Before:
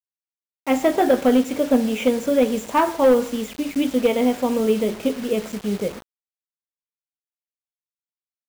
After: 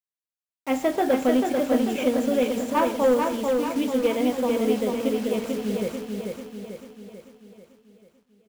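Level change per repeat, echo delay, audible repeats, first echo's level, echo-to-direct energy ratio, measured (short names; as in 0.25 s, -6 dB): -5.5 dB, 0.441 s, 6, -4.0 dB, -2.5 dB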